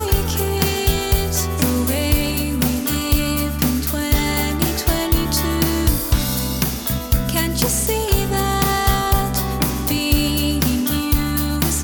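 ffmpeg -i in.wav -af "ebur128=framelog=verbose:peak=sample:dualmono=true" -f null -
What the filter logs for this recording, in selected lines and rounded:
Integrated loudness:
  I:         -15.8 LUFS
  Threshold: -25.8 LUFS
Loudness range:
  LRA:         0.7 LU
  Threshold: -35.8 LUFS
  LRA low:   -16.0 LUFS
  LRA high:  -15.3 LUFS
Sample peak:
  Peak:       -5.3 dBFS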